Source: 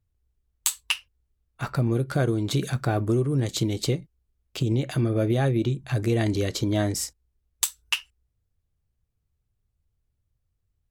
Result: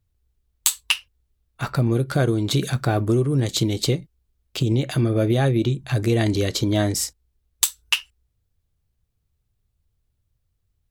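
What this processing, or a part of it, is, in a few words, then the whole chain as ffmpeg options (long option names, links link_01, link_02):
presence and air boost: -af "equalizer=frequency=3800:width_type=o:width=0.77:gain=3,highshelf=frequency=11000:gain=3.5,volume=3.5dB"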